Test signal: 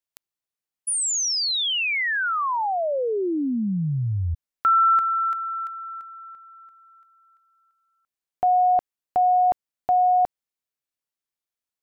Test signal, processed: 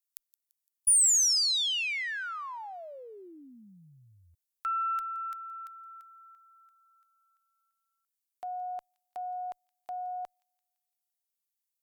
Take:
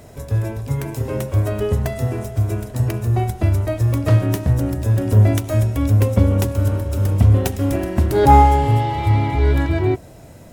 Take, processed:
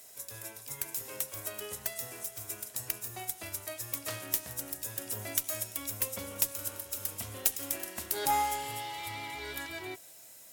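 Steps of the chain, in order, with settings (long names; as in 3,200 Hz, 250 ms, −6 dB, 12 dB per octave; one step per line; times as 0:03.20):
first difference
delay with a high-pass on its return 170 ms, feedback 49%, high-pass 2,900 Hz, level −19.5 dB
harmonic generator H 4 −26 dB, 5 −29 dB, 6 −22 dB, 8 −24 dB, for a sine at −6.5 dBFS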